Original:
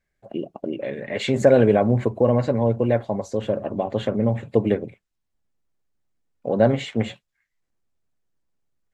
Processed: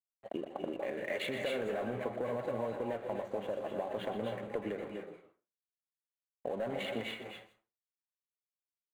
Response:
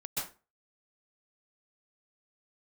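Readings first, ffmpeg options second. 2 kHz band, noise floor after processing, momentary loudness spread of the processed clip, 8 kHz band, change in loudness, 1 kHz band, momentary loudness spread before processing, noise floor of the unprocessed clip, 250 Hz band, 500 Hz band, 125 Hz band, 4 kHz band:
−8.5 dB, below −85 dBFS, 9 LU, can't be measured, −16.5 dB, −12.0 dB, 14 LU, −78 dBFS, −18.0 dB, −15.5 dB, −24.0 dB, −8.5 dB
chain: -filter_complex "[0:a]highpass=frequency=750:poles=1,asoftclip=type=tanh:threshold=-18.5dB,adynamicsmooth=sensitivity=4:basefreq=2000,alimiter=limit=-23dB:level=0:latency=1:release=22,aecho=1:1:161|322:0.112|0.0269,acompressor=threshold=-38dB:ratio=6,aeval=exprs='sgn(val(0))*max(abs(val(0))-0.00141,0)':channel_layout=same,equalizer=frequency=5200:width=2.6:gain=-12,bandreject=frequency=5400:width=17,asplit=2[link_01][link_02];[1:a]atrim=start_sample=2205,lowshelf=frequency=430:gain=-6,adelay=121[link_03];[link_02][link_03]afir=irnorm=-1:irlink=0,volume=-4dB[link_04];[link_01][link_04]amix=inputs=2:normalize=0,volume=4dB"

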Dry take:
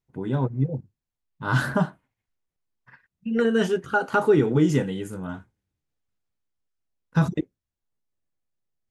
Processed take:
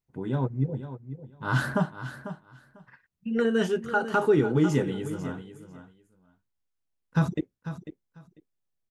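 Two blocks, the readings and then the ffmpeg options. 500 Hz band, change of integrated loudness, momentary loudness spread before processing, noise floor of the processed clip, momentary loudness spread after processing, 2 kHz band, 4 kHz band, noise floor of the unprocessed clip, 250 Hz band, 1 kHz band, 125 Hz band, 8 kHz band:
−2.5 dB, −3.5 dB, 16 LU, −80 dBFS, 18 LU, −2.5 dB, −2.5 dB, below −85 dBFS, −2.5 dB, −2.5 dB, −2.5 dB, −2.5 dB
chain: -af "aecho=1:1:496|992:0.251|0.0427,volume=-3dB"

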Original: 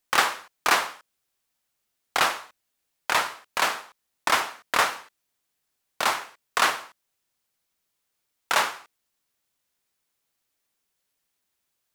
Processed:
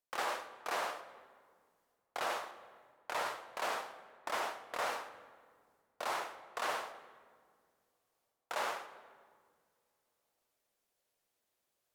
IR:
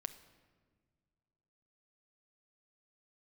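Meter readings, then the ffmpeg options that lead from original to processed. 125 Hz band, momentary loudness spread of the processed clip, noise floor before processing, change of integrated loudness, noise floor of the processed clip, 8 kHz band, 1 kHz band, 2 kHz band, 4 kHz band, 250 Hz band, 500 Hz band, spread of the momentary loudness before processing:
below −15 dB, 15 LU, −79 dBFS, −14.5 dB, −84 dBFS, −16.5 dB, −12.5 dB, −15.5 dB, −16.5 dB, −12.5 dB, −7.5 dB, 13 LU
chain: -filter_complex "[0:a]equalizer=frequency=560:width=1:gain=10,areverse,acompressor=threshold=-29dB:ratio=6,areverse[link_01];[1:a]atrim=start_sample=2205,asetrate=33516,aresample=44100[link_02];[link_01][link_02]afir=irnorm=-1:irlink=0,volume=-4.5dB"

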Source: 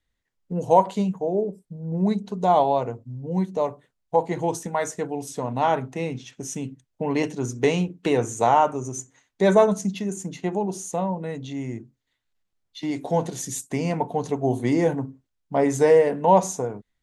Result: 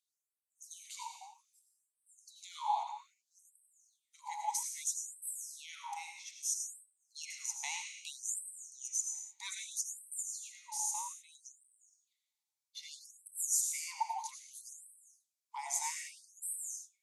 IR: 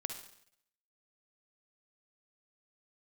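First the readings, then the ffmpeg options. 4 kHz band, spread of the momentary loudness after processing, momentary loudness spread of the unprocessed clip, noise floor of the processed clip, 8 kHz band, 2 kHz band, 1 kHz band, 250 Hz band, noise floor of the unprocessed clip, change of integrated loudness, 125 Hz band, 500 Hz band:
−7.0 dB, 16 LU, 13 LU, below −85 dBFS, +0.5 dB, −14.5 dB, −18.0 dB, below −40 dB, −78 dBFS, −14.5 dB, below −40 dB, below −40 dB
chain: -filter_complex "[0:a]acrossover=split=180|4100[link_01][link_02][link_03];[link_01]acompressor=threshold=-41dB:ratio=8[link_04];[link_02]asplit=3[link_05][link_06][link_07];[link_05]bandpass=frequency=300:width_type=q:width=8,volume=0dB[link_08];[link_06]bandpass=frequency=870:width_type=q:width=8,volume=-6dB[link_09];[link_07]bandpass=frequency=2240:width_type=q:width=8,volume=-9dB[link_10];[link_08][link_09][link_10]amix=inputs=3:normalize=0[link_11];[link_04][link_11][link_03]amix=inputs=3:normalize=0,aeval=exprs='val(0)+0.00316*(sin(2*PI*60*n/s)+sin(2*PI*2*60*n/s)/2+sin(2*PI*3*60*n/s)/3+sin(2*PI*4*60*n/s)/4+sin(2*PI*5*60*n/s)/5)':channel_layout=same[link_12];[1:a]atrim=start_sample=2205,afade=type=out:start_time=0.24:duration=0.01,atrim=end_sample=11025,asetrate=27342,aresample=44100[link_13];[link_12][link_13]afir=irnorm=-1:irlink=0,afftfilt=real='re*gte(b*sr/1024,670*pow(7900/670,0.5+0.5*sin(2*PI*0.62*pts/sr)))':imag='im*gte(b*sr/1024,670*pow(7900/670,0.5+0.5*sin(2*PI*0.62*pts/sr)))':win_size=1024:overlap=0.75"

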